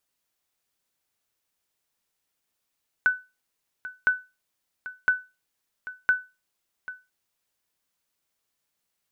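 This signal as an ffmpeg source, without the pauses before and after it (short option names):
-f lavfi -i "aevalsrc='0.237*(sin(2*PI*1500*mod(t,1.01))*exp(-6.91*mod(t,1.01)/0.26)+0.158*sin(2*PI*1500*max(mod(t,1.01)-0.79,0))*exp(-6.91*max(mod(t,1.01)-0.79,0)/0.26))':d=4.04:s=44100"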